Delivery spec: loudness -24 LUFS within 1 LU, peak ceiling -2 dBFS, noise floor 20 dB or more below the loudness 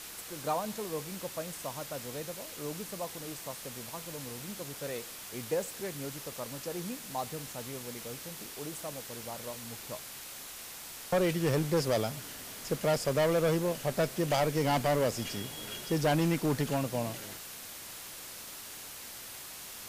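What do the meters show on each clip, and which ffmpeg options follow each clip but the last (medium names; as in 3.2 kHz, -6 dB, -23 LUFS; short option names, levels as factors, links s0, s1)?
noise floor -45 dBFS; noise floor target -54 dBFS; loudness -34.0 LUFS; peak level -19.5 dBFS; loudness target -24.0 LUFS
-> -af "afftdn=nr=9:nf=-45"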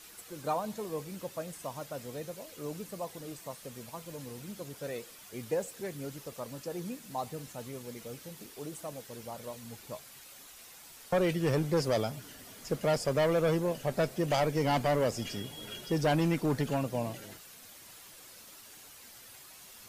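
noise floor -52 dBFS; noise floor target -54 dBFS
-> -af "afftdn=nr=6:nf=-52"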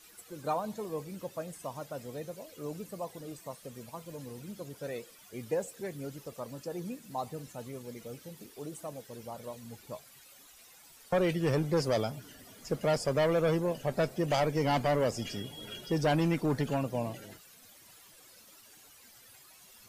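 noise floor -57 dBFS; loudness -34.0 LUFS; peak level -20.5 dBFS; loudness target -24.0 LUFS
-> -af "volume=3.16"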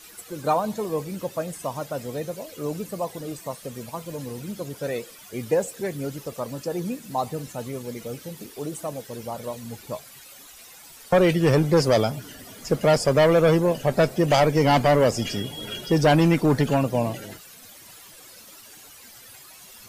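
loudness -24.0 LUFS; peak level -10.5 dBFS; noise floor -47 dBFS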